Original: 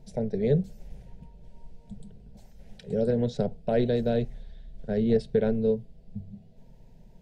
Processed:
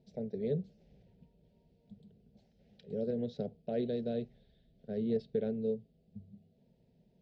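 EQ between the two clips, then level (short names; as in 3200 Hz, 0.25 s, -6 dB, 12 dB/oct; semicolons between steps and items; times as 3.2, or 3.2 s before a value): speaker cabinet 120–4500 Hz, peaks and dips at 130 Hz -7 dB, 190 Hz -3 dB, 980 Hz -8 dB; bell 1400 Hz -10 dB 2.2 oct; -6.0 dB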